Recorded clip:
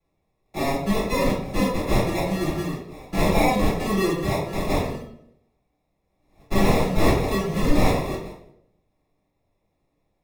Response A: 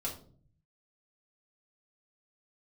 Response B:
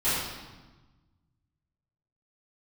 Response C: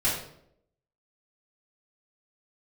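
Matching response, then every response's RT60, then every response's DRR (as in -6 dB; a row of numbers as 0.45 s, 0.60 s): C; 0.50 s, 1.2 s, 0.70 s; -4.5 dB, -15.5 dB, -10.0 dB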